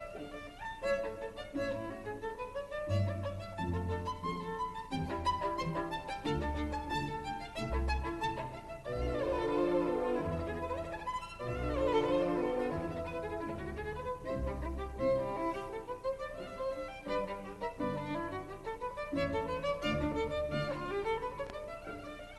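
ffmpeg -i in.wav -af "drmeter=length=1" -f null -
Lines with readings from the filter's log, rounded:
Channel 1: DR: 10.1
Overall DR: 10.1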